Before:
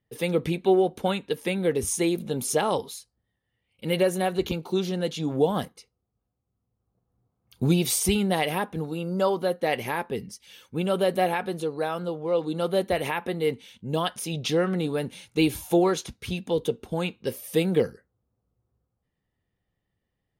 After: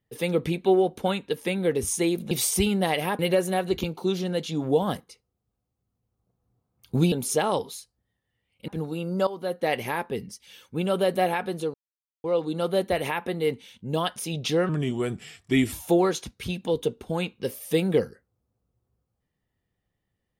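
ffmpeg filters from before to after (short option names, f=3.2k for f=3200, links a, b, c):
-filter_complex "[0:a]asplit=10[a][b][c][d][e][f][g][h][i][j];[a]atrim=end=2.312[k];[b]atrim=start=7.798:end=8.682[l];[c]atrim=start=3.868:end=7.802[m];[d]atrim=start=2.308:end=3.872[n];[e]atrim=start=8.678:end=9.27,asetpts=PTS-STARTPTS,afade=t=out:st=0.588:d=0.004:c=hsin:silence=0.188365[o];[f]atrim=start=9.27:end=11.74,asetpts=PTS-STARTPTS,afade=t=in:d=0.37:silence=0.188365,afade=t=out:st=2.466:d=0.004:c=hsin[p];[g]atrim=start=11.74:end=12.24,asetpts=PTS-STARTPTS,volume=0[q];[h]atrim=start=12.24:end=14.694,asetpts=PTS-STARTPTS,afade=t=in:d=0.004:c=hsin[r];[i]atrim=start=14.69:end=15.55,asetpts=PTS-STARTPTS,asetrate=36603,aresample=44100[s];[j]atrim=start=15.546[t];[k][l]acrossfade=d=0.004:c1=hsin:c2=hsin[u];[u][m]acrossfade=d=0.004:c1=hsin:c2=hsin[v];[v][n]acrossfade=d=0.004:c1=hsin:c2=hsin[w];[o][p][q][r]concat=n=4:v=0:a=1[x];[w][x]acrossfade=d=0.004:c1=hsin:c2=hsin[y];[y][s]acrossfade=d=0.004:c1=hsin:c2=hsin[z];[z][t]acrossfade=d=0.004:c1=hsin:c2=hsin"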